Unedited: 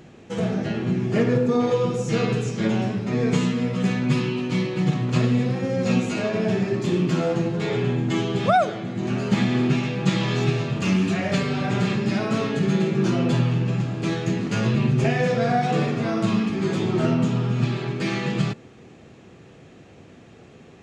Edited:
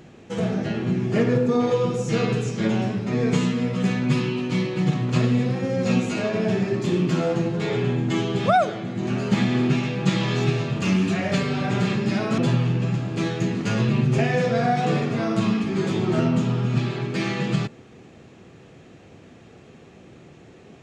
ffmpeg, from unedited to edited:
ffmpeg -i in.wav -filter_complex "[0:a]asplit=2[link_01][link_02];[link_01]atrim=end=12.382[link_03];[link_02]atrim=start=13.238[link_04];[link_03][link_04]acrossfade=duration=0.004:curve1=hsin:curve2=hsin" out.wav

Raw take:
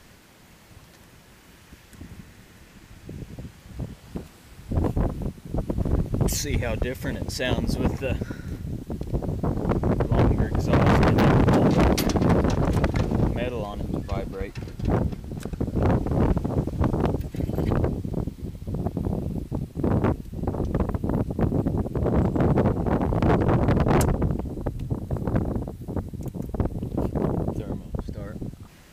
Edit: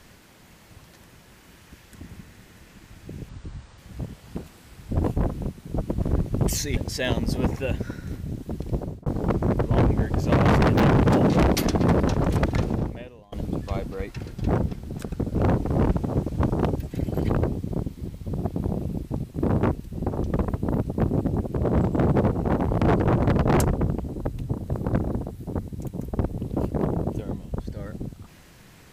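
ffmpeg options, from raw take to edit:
ffmpeg -i in.wav -filter_complex "[0:a]asplit=6[link_01][link_02][link_03][link_04][link_05][link_06];[link_01]atrim=end=3.294[link_07];[link_02]atrim=start=3.29:end=3.58,asetpts=PTS-STARTPTS,asetrate=26019,aresample=44100,atrim=end_sample=21676,asetpts=PTS-STARTPTS[link_08];[link_03]atrim=start=3.576:end=6.572[link_09];[link_04]atrim=start=7.178:end=9.47,asetpts=PTS-STARTPTS,afade=type=out:start_time=1.992:duration=0.3[link_10];[link_05]atrim=start=9.47:end=13.73,asetpts=PTS-STARTPTS,afade=type=in:duration=0.004:curve=hsin,afade=type=out:start_time=3.6:duration=0.66:curve=qua:silence=0.0749894[link_11];[link_06]atrim=start=13.73,asetpts=PTS-STARTPTS,afade=type=in:duration=0.004:curve=hsin:silence=0.0749894[link_12];[link_07][link_08]acrossfade=duration=0.004:curve1=hsin:curve2=hsin[link_13];[link_13][link_09]acrossfade=duration=0.004:curve1=hsin:curve2=hsin[link_14];[link_10][link_11][link_12]concat=n=3:v=0:a=1[link_15];[link_14][link_15]acrossfade=duration=0.004:curve1=hsin:curve2=hsin" out.wav

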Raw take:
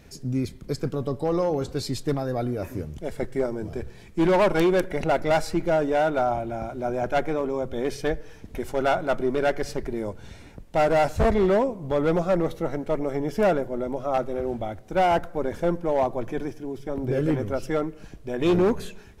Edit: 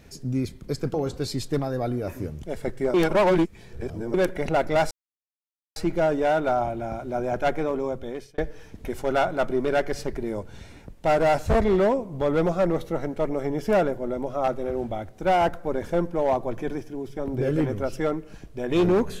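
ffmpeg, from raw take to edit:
ffmpeg -i in.wav -filter_complex "[0:a]asplit=6[link_01][link_02][link_03][link_04][link_05][link_06];[link_01]atrim=end=0.942[link_07];[link_02]atrim=start=1.488:end=3.492[link_08];[link_03]atrim=start=3.488:end=4.692,asetpts=PTS-STARTPTS,areverse[link_09];[link_04]atrim=start=4.688:end=5.46,asetpts=PTS-STARTPTS,afade=type=out:start_time=0.768:duration=0.004:curve=hsin,apad=pad_dur=0.85[link_10];[link_05]atrim=start=5.46:end=8.08,asetpts=PTS-STARTPTS,afade=type=in:duration=0.004:curve=hsin,afade=type=out:start_time=2.09:duration=0.53[link_11];[link_06]atrim=start=8.08,asetpts=PTS-STARTPTS,afade=type=in:duration=0.004:curve=hsin[link_12];[link_07][link_08]acrossfade=duration=0.004:curve1=hsin:curve2=hsin[link_13];[link_13][link_09]acrossfade=duration=0.004:curve1=hsin:curve2=hsin[link_14];[link_10][link_11][link_12]concat=n=3:v=0:a=1[link_15];[link_14][link_15]acrossfade=duration=0.004:curve1=hsin:curve2=hsin" out.wav

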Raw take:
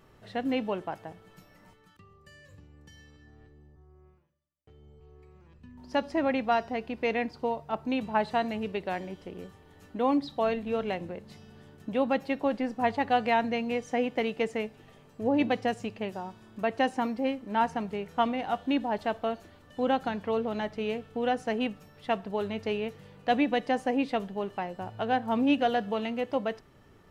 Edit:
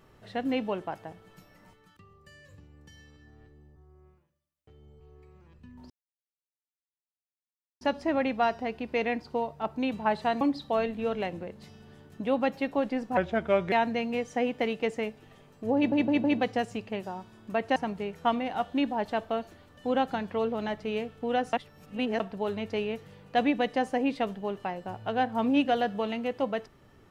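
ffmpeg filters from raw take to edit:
ffmpeg -i in.wav -filter_complex "[0:a]asplit=11[link_01][link_02][link_03][link_04][link_05][link_06][link_07][link_08][link_09][link_10][link_11];[link_01]atrim=end=5.9,asetpts=PTS-STARTPTS,afade=type=out:start_time=5.896:duration=0.004:curve=hsin,apad=pad_dur=1.91[link_12];[link_02]atrim=start=5.9:end=8.502,asetpts=PTS-STARTPTS,afade=type=in:duration=0.004:curve=hsin[link_13];[link_03]atrim=start=10.088:end=12.854[link_14];[link_04]atrim=start=12.85:end=13.29,asetpts=PTS-STARTPTS,asetrate=35280,aresample=44100[link_15];[link_05]atrim=start=13.286:end=15.492[link_16];[link_06]atrim=start=15.328:end=15.492[link_17];[link_07]atrim=start=15.328:end=15.492[link_18];[link_08]atrim=start=15.328:end=16.852[link_19];[link_09]atrim=start=17.688:end=21.462[link_20];[link_10]atrim=start=21.458:end=22.132,asetpts=PTS-STARTPTS,areverse[link_21];[link_11]atrim=start=22.128[link_22];[link_12][link_13]concat=n=2:v=0:a=1[link_23];[link_23][link_14]acrossfade=duration=0.004:curve1=hsin:curve2=hsin[link_24];[link_24][link_15]acrossfade=duration=0.004:curve1=hsin:curve2=hsin[link_25];[link_25][link_16]acrossfade=duration=0.004:curve1=hsin:curve2=hsin[link_26];[link_26][link_17]acrossfade=duration=0.004:curve1=hsin:curve2=hsin[link_27];[link_27][link_18]acrossfade=duration=0.004:curve1=hsin:curve2=hsin[link_28];[link_28][link_19]acrossfade=duration=0.004:curve1=hsin:curve2=hsin[link_29];[link_29][link_20]acrossfade=duration=0.004:curve1=hsin:curve2=hsin[link_30];[link_30][link_21]acrossfade=duration=0.004:curve1=hsin:curve2=hsin[link_31];[link_31][link_22]acrossfade=duration=0.004:curve1=hsin:curve2=hsin" out.wav

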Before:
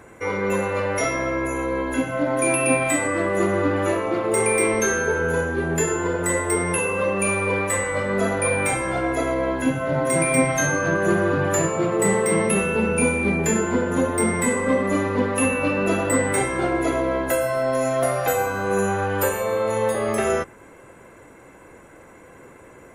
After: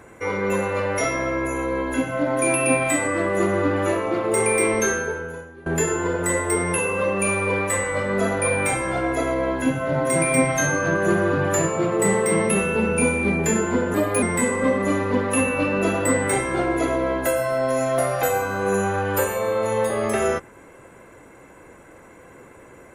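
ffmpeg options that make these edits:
ffmpeg -i in.wav -filter_complex "[0:a]asplit=4[link_01][link_02][link_03][link_04];[link_01]atrim=end=5.66,asetpts=PTS-STARTPTS,afade=type=out:start_time=4.88:duration=0.78:curve=qua:silence=0.1[link_05];[link_02]atrim=start=5.66:end=13.944,asetpts=PTS-STARTPTS,afade=type=in:duration=0.004:curve=hsin:silence=0.1[link_06];[link_03]atrim=start=13.94:end=14.27,asetpts=PTS-STARTPTS,asetrate=51156,aresample=44100[link_07];[link_04]atrim=start=14.266[link_08];[link_05][link_06]concat=n=2:v=0:a=1[link_09];[link_09][link_07]acrossfade=duration=0.004:curve1=hsin:curve2=hsin[link_10];[link_10][link_08]acrossfade=duration=0.004:curve1=hsin:curve2=hsin" out.wav

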